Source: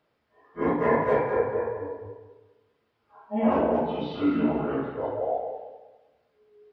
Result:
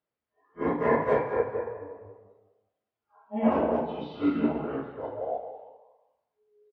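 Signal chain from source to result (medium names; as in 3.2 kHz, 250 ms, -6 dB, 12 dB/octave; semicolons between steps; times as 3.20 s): spectral noise reduction 10 dB; frequency-shifting echo 184 ms, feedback 30%, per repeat +100 Hz, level -17 dB; upward expansion 1.5:1, over -33 dBFS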